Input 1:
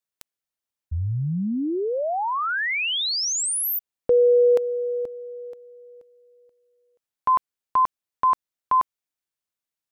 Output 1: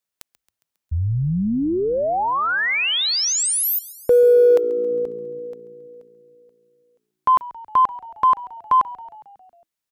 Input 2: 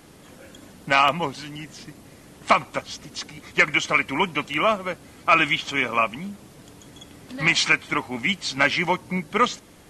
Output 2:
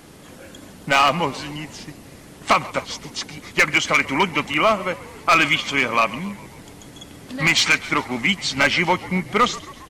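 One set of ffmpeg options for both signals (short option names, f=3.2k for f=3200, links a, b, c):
-filter_complex "[0:a]asoftclip=type=hard:threshold=-13dB,acontrast=31,asplit=7[a][b][c][d][e][f][g];[b]adelay=136,afreqshift=-57,volume=-19dB[h];[c]adelay=272,afreqshift=-114,volume=-23.2dB[i];[d]adelay=408,afreqshift=-171,volume=-27.3dB[j];[e]adelay=544,afreqshift=-228,volume=-31.5dB[k];[f]adelay=680,afreqshift=-285,volume=-35.6dB[l];[g]adelay=816,afreqshift=-342,volume=-39.8dB[m];[a][h][i][j][k][l][m]amix=inputs=7:normalize=0,volume=-1dB"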